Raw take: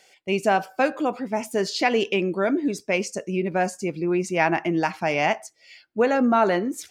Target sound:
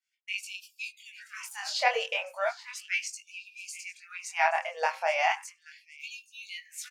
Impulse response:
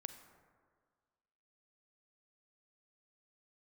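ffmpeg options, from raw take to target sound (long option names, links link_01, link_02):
-filter_complex "[0:a]agate=range=-33dB:threshold=-41dB:ratio=3:detection=peak,aecho=1:1:828|1656|2484:0.133|0.0387|0.0112,flanger=delay=19.5:depth=5.3:speed=0.31,asettb=1/sr,asplit=3[link_01][link_02][link_03];[link_01]atrim=end=5.994[link_04];[link_02]atrim=start=5.99:end=6.48,asetpts=PTS-STARTPTS,afade=type=in:duration=0.004:curve=qsin,afade=type=out:start_time=0.486:duration=0.004:curve=qsin,bandreject=frequency=7600:width=10[link_05];[link_03]atrim=start=6.476[link_06];[link_04][link_05]acrossfade=duration=0.004:curve1=hsin:curve2=qsin[link_07];[link_07][link_06]acrossfade=duration=0.004:curve1=qsin:curve2=hsin,afftfilt=real='re*gte(b*sr/1024,460*pow(2400/460,0.5+0.5*sin(2*PI*0.36*pts/sr)))':imag='im*gte(b*sr/1024,460*pow(2400/460,0.5+0.5*sin(2*PI*0.36*pts/sr)))':win_size=1024:overlap=0.75"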